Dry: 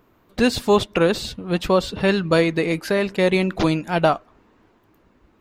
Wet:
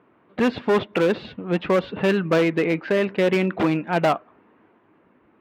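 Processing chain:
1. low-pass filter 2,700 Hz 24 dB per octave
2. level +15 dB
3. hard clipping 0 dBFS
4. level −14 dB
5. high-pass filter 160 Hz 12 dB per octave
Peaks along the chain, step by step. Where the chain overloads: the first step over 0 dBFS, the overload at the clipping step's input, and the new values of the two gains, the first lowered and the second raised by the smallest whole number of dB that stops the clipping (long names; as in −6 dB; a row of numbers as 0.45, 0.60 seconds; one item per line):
−5.5, +9.5, 0.0, −14.0, −8.0 dBFS
step 2, 9.5 dB
step 2 +5 dB, step 4 −4 dB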